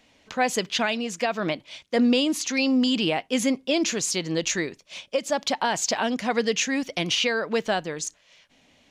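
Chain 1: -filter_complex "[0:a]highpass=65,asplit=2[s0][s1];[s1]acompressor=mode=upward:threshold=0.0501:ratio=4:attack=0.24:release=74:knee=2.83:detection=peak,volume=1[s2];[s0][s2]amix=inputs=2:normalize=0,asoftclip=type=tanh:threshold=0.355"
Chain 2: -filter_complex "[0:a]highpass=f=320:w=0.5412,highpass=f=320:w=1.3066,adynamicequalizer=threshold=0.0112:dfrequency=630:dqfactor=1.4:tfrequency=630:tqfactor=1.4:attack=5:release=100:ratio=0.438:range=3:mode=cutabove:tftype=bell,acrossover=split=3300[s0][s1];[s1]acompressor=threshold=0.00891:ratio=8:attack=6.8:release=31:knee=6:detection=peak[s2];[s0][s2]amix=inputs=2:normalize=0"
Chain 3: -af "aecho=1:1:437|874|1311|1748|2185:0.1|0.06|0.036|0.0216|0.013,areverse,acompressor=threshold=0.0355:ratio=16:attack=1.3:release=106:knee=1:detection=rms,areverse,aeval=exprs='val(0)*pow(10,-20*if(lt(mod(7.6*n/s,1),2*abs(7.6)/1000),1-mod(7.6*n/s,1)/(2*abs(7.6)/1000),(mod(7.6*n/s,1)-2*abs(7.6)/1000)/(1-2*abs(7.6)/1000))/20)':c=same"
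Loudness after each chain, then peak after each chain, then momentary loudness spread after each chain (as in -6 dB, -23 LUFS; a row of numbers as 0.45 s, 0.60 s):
-20.0 LUFS, -28.5 LUFS, -42.0 LUFS; -10.0 dBFS, -11.0 dBFS, -24.0 dBFS; 10 LU, 6 LU, 5 LU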